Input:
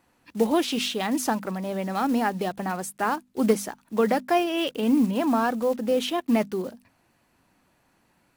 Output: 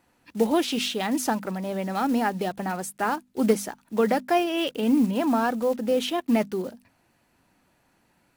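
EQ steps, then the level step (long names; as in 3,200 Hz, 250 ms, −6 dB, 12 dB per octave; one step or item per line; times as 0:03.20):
notch filter 1,100 Hz, Q 15
0.0 dB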